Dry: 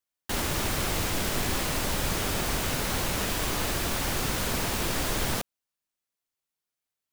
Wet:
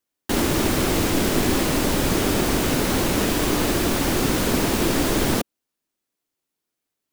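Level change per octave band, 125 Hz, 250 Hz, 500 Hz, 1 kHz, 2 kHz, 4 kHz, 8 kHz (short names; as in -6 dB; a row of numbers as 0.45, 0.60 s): +7.0, +13.0, +10.5, +6.0, +5.0, +4.5, +4.5 dB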